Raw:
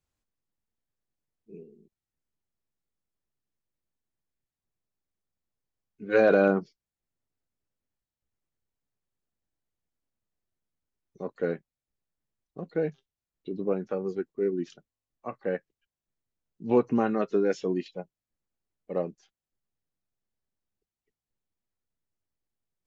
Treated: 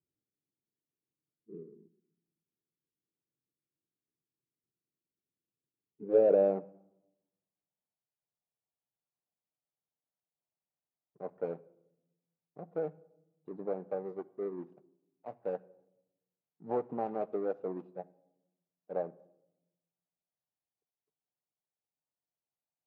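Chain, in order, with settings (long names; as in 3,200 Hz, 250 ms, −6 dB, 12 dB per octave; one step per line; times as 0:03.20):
running median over 41 samples
parametric band 130 Hz +12.5 dB 1.4 octaves
downward compressor 1.5 to 1, threshold −27 dBFS, peak gain reduction 5 dB
dynamic equaliser 620 Hz, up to +4 dB, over −36 dBFS, Q 0.71
rectangular room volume 3,200 cubic metres, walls furnished, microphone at 0.44 metres
band-pass filter sweep 360 Hz → 760 Hz, 0:05.82–0:06.78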